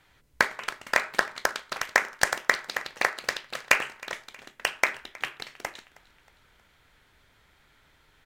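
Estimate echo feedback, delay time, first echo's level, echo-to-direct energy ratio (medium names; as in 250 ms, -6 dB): 49%, 316 ms, -22.5 dB, -21.5 dB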